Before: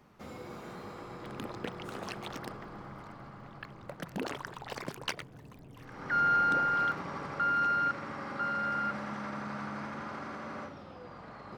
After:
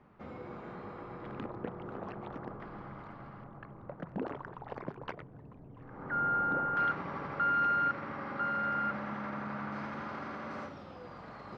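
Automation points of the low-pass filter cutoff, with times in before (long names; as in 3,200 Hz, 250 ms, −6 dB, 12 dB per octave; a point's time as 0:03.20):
2,100 Hz
from 0:01.46 1,200 Hz
from 0:02.60 2,700 Hz
from 0:03.44 1,200 Hz
from 0:06.77 2,800 Hz
from 0:09.72 4,300 Hz
from 0:10.51 6,900 Hz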